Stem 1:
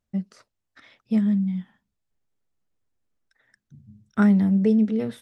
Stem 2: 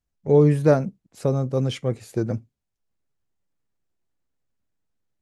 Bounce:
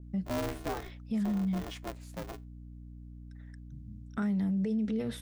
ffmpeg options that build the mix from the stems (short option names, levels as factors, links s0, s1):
-filter_complex "[0:a]aeval=exprs='val(0)+0.00631*(sin(2*PI*60*n/s)+sin(2*PI*2*60*n/s)/2+sin(2*PI*3*60*n/s)/3+sin(2*PI*4*60*n/s)/4+sin(2*PI*5*60*n/s)/5)':c=same,alimiter=limit=0.1:level=0:latency=1:release=93,adynamicequalizer=threshold=0.00355:dfrequency=2300:dqfactor=0.7:tfrequency=2300:tqfactor=0.7:attack=5:release=100:ratio=0.375:range=2:mode=boostabove:tftype=highshelf,volume=0.841[s0];[1:a]highpass=f=440:p=1,aeval=exprs='val(0)*sgn(sin(2*PI*180*n/s))':c=same,volume=0.266[s1];[s0][s1]amix=inputs=2:normalize=0,alimiter=level_in=1.19:limit=0.0631:level=0:latency=1:release=51,volume=0.841"